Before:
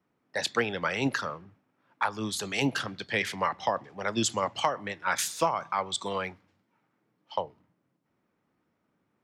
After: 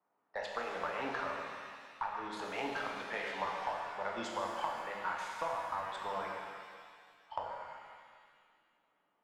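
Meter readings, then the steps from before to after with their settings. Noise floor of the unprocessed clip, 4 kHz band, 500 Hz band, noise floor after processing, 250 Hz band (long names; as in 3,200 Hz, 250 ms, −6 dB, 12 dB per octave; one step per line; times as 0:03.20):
−77 dBFS, −13.5 dB, −8.0 dB, −79 dBFS, −14.0 dB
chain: resonant band-pass 890 Hz, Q 2
downward compressor, threshold −37 dBFS, peak gain reduction 14 dB
harmonic generator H 8 −33 dB, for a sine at −21 dBFS
reverb with rising layers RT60 1.9 s, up +7 semitones, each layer −8 dB, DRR −1 dB
level +1 dB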